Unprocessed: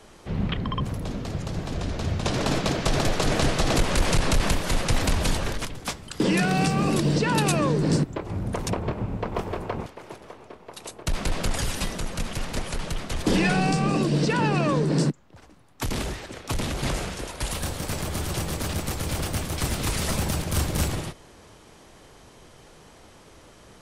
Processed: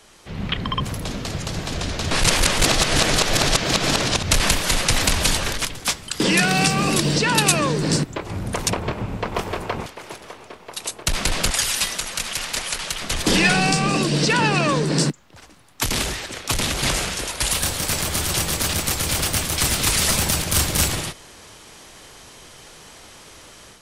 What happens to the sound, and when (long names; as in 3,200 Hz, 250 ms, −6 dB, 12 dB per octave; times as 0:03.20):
0:02.11–0:04.31: reverse
0:11.50–0:13.02: low-shelf EQ 460 Hz −11.5 dB
whole clip: tilt shelving filter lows −5.5 dB, about 1,300 Hz; automatic gain control gain up to 7 dB